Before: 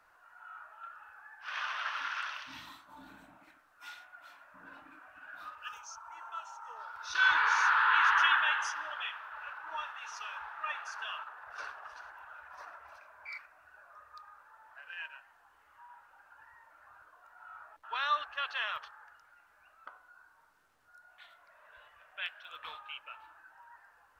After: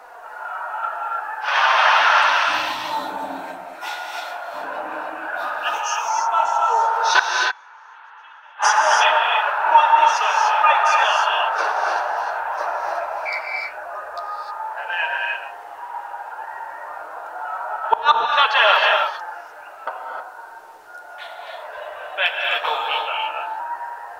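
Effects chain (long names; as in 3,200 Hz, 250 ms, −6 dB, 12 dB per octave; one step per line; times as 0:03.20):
low-shelf EQ 280 Hz −11 dB
flanger 0.11 Hz, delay 4 ms, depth 9.6 ms, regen −8%
flat-topped bell 560 Hz +13 dB
gate with flip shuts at −22 dBFS, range −41 dB
reverb whose tail is shaped and stops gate 330 ms rising, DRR 0.5 dB
boost into a limiter +22.5 dB
level −1 dB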